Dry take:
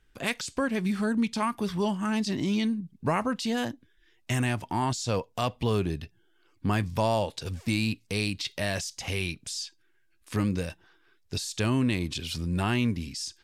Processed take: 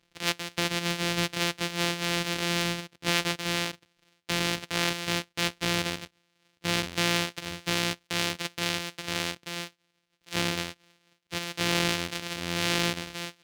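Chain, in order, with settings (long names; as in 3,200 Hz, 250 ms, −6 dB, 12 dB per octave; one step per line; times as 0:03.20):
samples sorted by size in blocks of 256 samples
meter weighting curve D
level −2.5 dB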